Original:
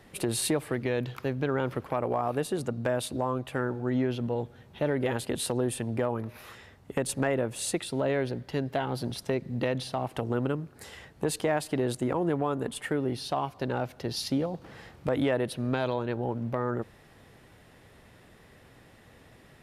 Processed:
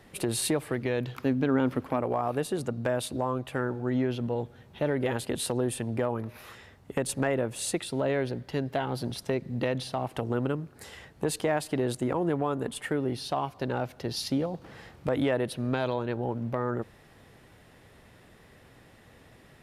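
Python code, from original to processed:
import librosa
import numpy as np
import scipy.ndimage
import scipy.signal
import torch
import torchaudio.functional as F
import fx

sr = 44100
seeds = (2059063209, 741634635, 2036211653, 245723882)

y = fx.peak_eq(x, sr, hz=260.0, db=10.0, octaves=0.32, at=(1.15, 2.02))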